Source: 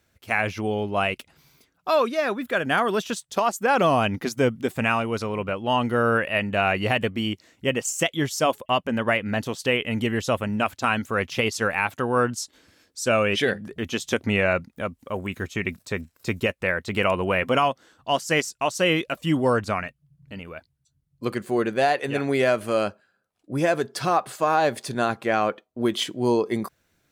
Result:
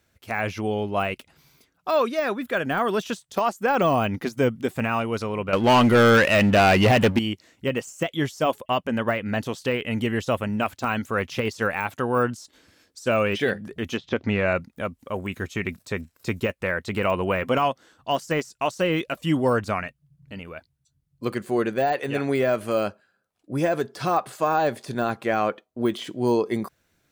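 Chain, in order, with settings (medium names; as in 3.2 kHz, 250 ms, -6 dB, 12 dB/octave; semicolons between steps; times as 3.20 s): de-esser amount 85%; 5.53–7.19 s: waveshaping leveller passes 3; 13.96–14.53 s: low-pass 3.5 kHz -> 9.1 kHz 24 dB/octave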